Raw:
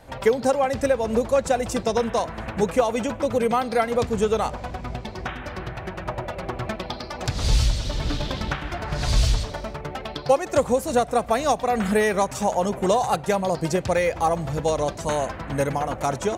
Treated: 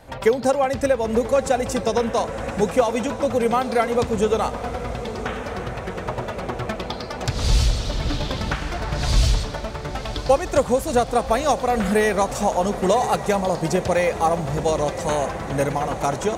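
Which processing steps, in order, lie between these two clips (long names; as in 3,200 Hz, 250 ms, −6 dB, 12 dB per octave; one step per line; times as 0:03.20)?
feedback delay with all-pass diffusion 1,016 ms, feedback 68%, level −13 dB
level +1.5 dB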